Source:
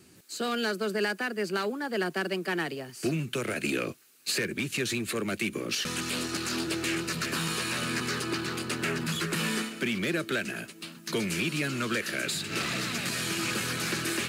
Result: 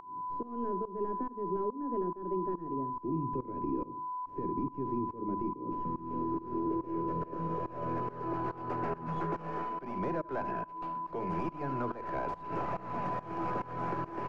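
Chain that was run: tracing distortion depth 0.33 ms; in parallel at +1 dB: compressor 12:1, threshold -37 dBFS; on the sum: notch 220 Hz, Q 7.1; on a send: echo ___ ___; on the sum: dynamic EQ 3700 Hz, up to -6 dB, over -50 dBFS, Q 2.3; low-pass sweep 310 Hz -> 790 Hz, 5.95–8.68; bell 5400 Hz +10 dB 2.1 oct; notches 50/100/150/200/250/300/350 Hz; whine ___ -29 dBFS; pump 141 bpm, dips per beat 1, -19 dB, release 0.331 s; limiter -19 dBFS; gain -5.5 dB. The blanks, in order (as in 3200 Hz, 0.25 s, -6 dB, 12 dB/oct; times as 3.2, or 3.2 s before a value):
74 ms, -13.5 dB, 1000 Hz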